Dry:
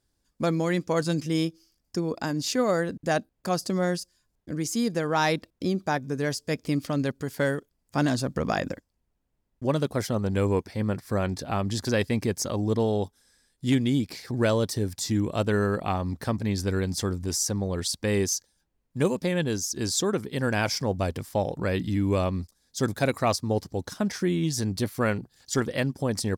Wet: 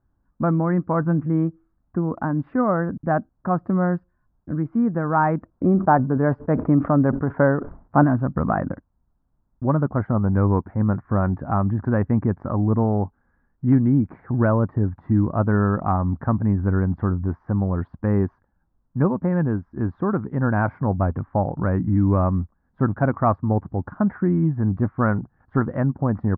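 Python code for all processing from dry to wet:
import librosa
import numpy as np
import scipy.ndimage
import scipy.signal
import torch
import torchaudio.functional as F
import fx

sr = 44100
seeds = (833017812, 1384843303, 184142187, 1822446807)

y = fx.chain(x, sr, fx.peak_eq(hz=600.0, db=7.0, octaves=2.3),
    fx.sustainer(db_per_s=130.0), at=(5.51, 8.04))
y = scipy.signal.sosfilt(scipy.signal.butter(6, 1400.0, 'lowpass', fs=sr, output='sos'), y)
y = fx.peak_eq(y, sr, hz=460.0, db=-10.0, octaves=0.95)
y = F.gain(torch.from_numpy(y), 8.5).numpy()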